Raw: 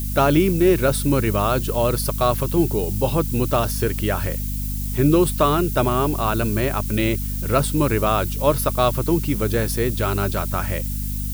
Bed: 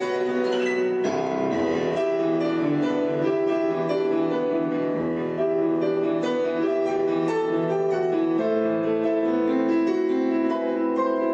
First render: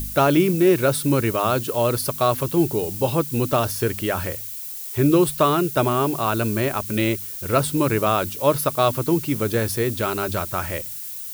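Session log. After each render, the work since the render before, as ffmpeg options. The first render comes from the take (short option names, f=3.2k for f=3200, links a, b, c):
-af "bandreject=f=50:t=h:w=4,bandreject=f=100:t=h:w=4,bandreject=f=150:t=h:w=4,bandreject=f=200:t=h:w=4,bandreject=f=250:t=h:w=4"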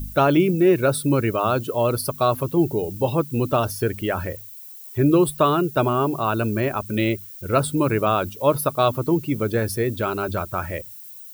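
-af "afftdn=nr=12:nf=-33"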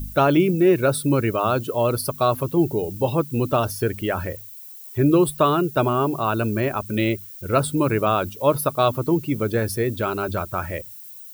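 -af anull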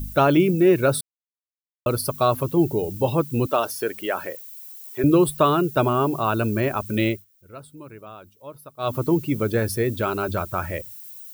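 -filter_complex "[0:a]asettb=1/sr,asplit=3[a][b][c];[a]atrim=end=3.464[d];[b]atrim=start=3.46:end=5.04,asetpts=PTS-STARTPTS,afade=t=in:d=0.004:c=qsin,afade=t=out:st=1.576:d=0.004:c=qsin,highpass=370[e];[c]atrim=start=5.036[f];[d][e]acrossfade=d=0.004:c1=hsin:c2=qsin[g];[g][f]acrossfade=d=0.004:c1=qsin:c2=hsin,asplit=5[h][i][j][k][l];[h]atrim=end=1.01,asetpts=PTS-STARTPTS,afade=t=out:st=1.006:d=0.004:c=hsin[m];[i]atrim=start=1.01:end=1.86,asetpts=PTS-STARTPTS,volume=0[n];[j]atrim=start=1.86:end=7.25,asetpts=PTS-STARTPTS,afade=t=in:d=0.004:c=hsin,afade=t=out:st=5.21:d=0.18:silence=0.0891251[o];[k]atrim=start=7.25:end=8.78,asetpts=PTS-STARTPTS,volume=-21dB[p];[l]atrim=start=8.78,asetpts=PTS-STARTPTS,afade=t=in:d=0.18:silence=0.0891251[q];[m][n][o][p][q]concat=n=5:v=0:a=1"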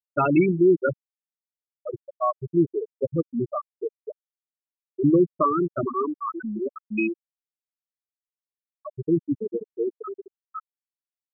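-af "equalizer=f=100:t=o:w=0.67:g=-8,equalizer=f=630:t=o:w=0.67:g=-5,equalizer=f=2.5k:t=o:w=0.67:g=9,equalizer=f=16k:t=o:w=0.67:g=-8,afftfilt=real='re*gte(hypot(re,im),0.447)':imag='im*gte(hypot(re,im),0.447)':win_size=1024:overlap=0.75"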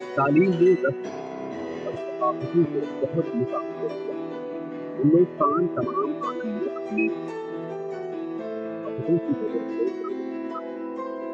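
-filter_complex "[1:a]volume=-9dB[a];[0:a][a]amix=inputs=2:normalize=0"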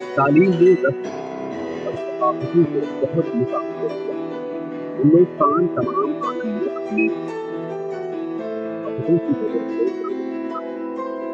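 -af "volume=5dB"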